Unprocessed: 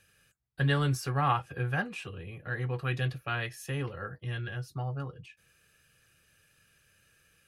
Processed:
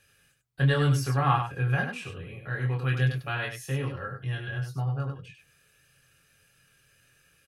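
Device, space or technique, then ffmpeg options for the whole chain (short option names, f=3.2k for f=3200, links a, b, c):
slapback doubling: -filter_complex "[0:a]aecho=1:1:7.3:0.33,asplit=3[a][b][c];[b]adelay=23,volume=-4dB[d];[c]adelay=97,volume=-6dB[e];[a][d][e]amix=inputs=3:normalize=0"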